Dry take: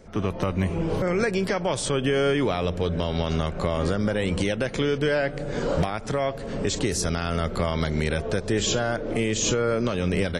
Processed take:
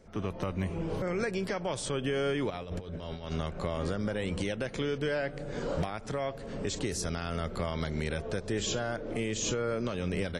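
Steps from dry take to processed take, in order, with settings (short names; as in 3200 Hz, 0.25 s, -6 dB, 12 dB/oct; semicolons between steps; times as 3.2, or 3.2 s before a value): 2.5–3.32 negative-ratio compressor -29 dBFS, ratio -0.5; gain -8 dB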